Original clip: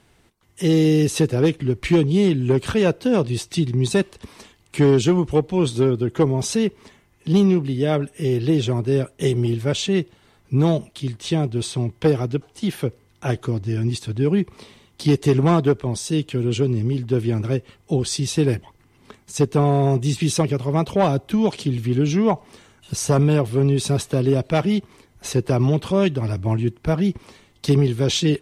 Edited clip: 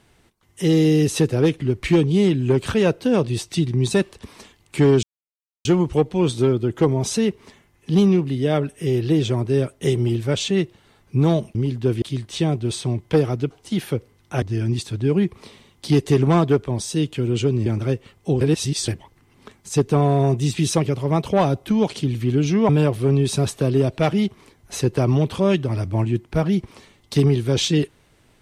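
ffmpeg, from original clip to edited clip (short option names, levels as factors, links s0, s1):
-filter_complex "[0:a]asplit=9[s0][s1][s2][s3][s4][s5][s6][s7][s8];[s0]atrim=end=5.03,asetpts=PTS-STARTPTS,afade=t=out:st=5.026:d=0.004:c=hsin,apad=pad_dur=0.62[s9];[s1]atrim=start=5.03:end=10.932,asetpts=PTS-STARTPTS,afade=t=in:d=0.004:c=hsin[s10];[s2]atrim=start=16.818:end=17.292[s11];[s3]atrim=start=10.928:end=13.332[s12];[s4]atrim=start=13.578:end=16.822[s13];[s5]atrim=start=17.288:end=18.042[s14];[s6]atrim=start=18.038:end=18.512,asetpts=PTS-STARTPTS,areverse[s15];[s7]atrim=start=18.508:end=22.322[s16];[s8]atrim=start=23.208[s17];[s9][s10]concat=n=2:v=0:a=1[s18];[s18][s11]acrossfade=d=0.004:c1=hsin:c2=hsin[s19];[s19][s12]acrossfade=d=0.004:c1=hsin:c2=hsin[s20];[s20][s13]acrossfade=d=0.004:c1=hsin:c2=hsin[s21];[s21][s14]acrossfade=d=0.004:c1=hsin:c2=hsin[s22];[s22][s15]acrossfade=d=0.004:c1=hsin:c2=hsin[s23];[s23][s16]acrossfade=d=0.004:c1=hsin:c2=hsin[s24];[s24][s17]acrossfade=d=0.004:c1=hsin:c2=hsin"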